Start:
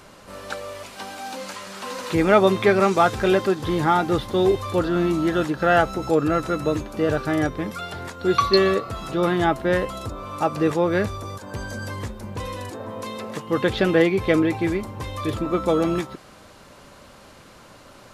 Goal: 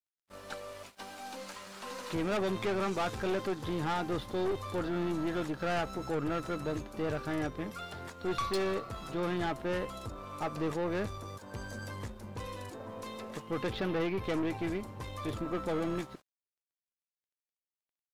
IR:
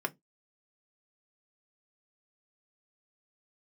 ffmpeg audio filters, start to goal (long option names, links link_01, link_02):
-filter_complex "[0:a]agate=range=-15dB:threshold=-39dB:ratio=16:detection=peak,aeval=exprs='(tanh(10*val(0)+0.4)-tanh(0.4))/10':channel_layout=same,aeval=exprs='sgn(val(0))*max(abs(val(0))-0.002,0)':channel_layout=same,asettb=1/sr,asplit=3[link_01][link_02][link_03];[link_01]atrim=end=13.714[link_04];[link_02]atrim=start=13.71:end=14.24,asetpts=PTS-STARTPTS,afade=type=in:duration=0.004:curve=qsin,afade=type=out:start_time=0.526:duration=0.004:curve=qsin,equalizer=frequency=7600:width=1.5:gain=-10[link_05];[link_03]atrim=start=14.236[link_06];[link_04][link_05]acrossfade=duration=0.004:curve1=hsin:curve2=qsin[link_07];[link_07][link_06]acrossfade=duration=0.004:curve1=qsin:curve2=hsin,volume=-8dB"